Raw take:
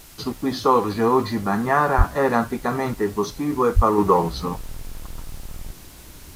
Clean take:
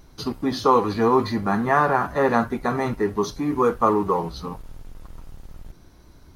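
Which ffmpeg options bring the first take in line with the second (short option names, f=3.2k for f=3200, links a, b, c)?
-filter_complex "[0:a]asplit=3[a][b][c];[a]afade=t=out:st=1.97:d=0.02[d];[b]highpass=f=140:w=0.5412,highpass=f=140:w=1.3066,afade=t=in:st=1.97:d=0.02,afade=t=out:st=2.09:d=0.02[e];[c]afade=t=in:st=2.09:d=0.02[f];[d][e][f]amix=inputs=3:normalize=0,asplit=3[g][h][i];[g]afade=t=out:st=3.75:d=0.02[j];[h]highpass=f=140:w=0.5412,highpass=f=140:w=1.3066,afade=t=in:st=3.75:d=0.02,afade=t=out:st=3.87:d=0.02[k];[i]afade=t=in:st=3.87:d=0.02[l];[j][k][l]amix=inputs=3:normalize=0,afwtdn=0.005,asetnsamples=n=441:p=0,asendcmd='3.98 volume volume -5.5dB',volume=0dB"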